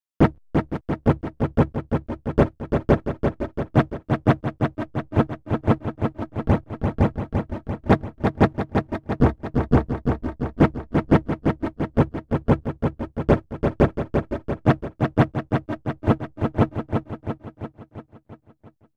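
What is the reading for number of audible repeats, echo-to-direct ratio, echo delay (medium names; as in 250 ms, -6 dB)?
7, -3.5 dB, 342 ms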